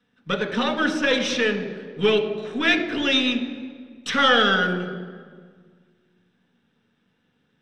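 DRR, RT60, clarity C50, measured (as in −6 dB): 3.5 dB, 1.7 s, 9.0 dB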